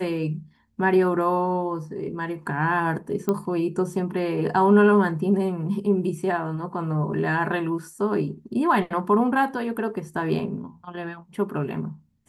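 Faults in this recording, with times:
3.29 pop -12 dBFS

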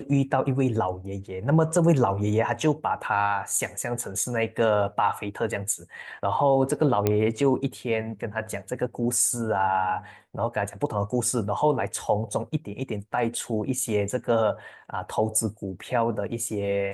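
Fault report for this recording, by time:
7.07 pop -9 dBFS

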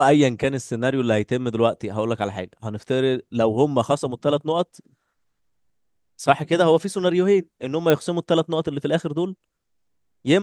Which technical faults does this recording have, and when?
7.9 pop -5 dBFS

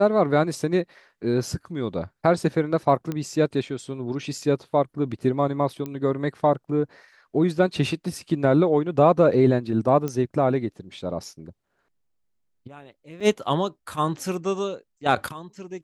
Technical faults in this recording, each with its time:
3.12 pop -16 dBFS
5.86 pop -19 dBFS
10.08 pop -16 dBFS
13.2–13.21 gap 5.3 ms

